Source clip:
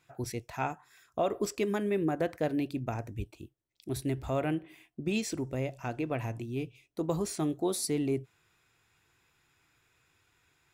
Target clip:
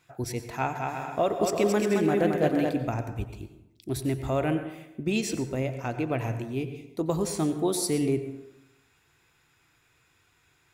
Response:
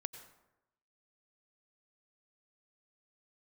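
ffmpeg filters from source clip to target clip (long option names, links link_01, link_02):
-filter_complex "[0:a]asettb=1/sr,asplit=3[link_01][link_02][link_03];[link_01]atrim=end=0.534[link_04];[link_02]atrim=start=0.53:end=2.72,asetpts=PTS-STARTPTS,afade=type=in:duration=0.004:curve=qsin,afade=type=out:start_time=2.186:duration=0.004:curve=qsin,aecho=1:1:220|352|431.2|478.7|507.2:0.631|0.398|0.251|0.158|0.1,atrim=end_sample=96579[link_05];[link_03]atrim=start=2.716[link_06];[link_04][link_05]acrossfade=duration=0.004:curve1=hsin:curve2=qsin[link_07];[link_07][link_06]acrossfade=duration=0.004:curve1=qsin:curve2=hsin[link_08];[1:a]atrim=start_sample=2205[link_09];[link_08][link_09]afir=irnorm=-1:irlink=0,volume=6.5dB"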